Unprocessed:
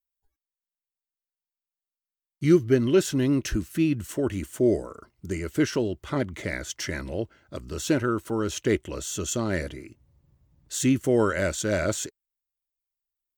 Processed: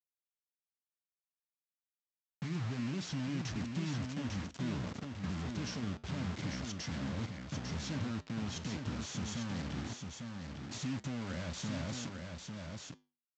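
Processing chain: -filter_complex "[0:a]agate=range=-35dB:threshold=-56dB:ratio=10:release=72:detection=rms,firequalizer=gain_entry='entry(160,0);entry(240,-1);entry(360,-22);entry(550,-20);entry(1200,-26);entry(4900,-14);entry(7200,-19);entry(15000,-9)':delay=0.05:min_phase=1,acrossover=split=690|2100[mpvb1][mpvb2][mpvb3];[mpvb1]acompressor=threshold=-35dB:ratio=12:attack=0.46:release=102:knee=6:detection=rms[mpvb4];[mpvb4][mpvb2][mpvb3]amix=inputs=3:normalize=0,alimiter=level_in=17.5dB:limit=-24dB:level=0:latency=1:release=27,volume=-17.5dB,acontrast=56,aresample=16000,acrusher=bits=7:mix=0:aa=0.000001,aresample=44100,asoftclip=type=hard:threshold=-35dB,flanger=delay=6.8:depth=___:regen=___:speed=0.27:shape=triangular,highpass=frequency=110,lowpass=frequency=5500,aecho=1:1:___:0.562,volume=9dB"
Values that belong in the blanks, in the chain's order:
5.3, -81, 849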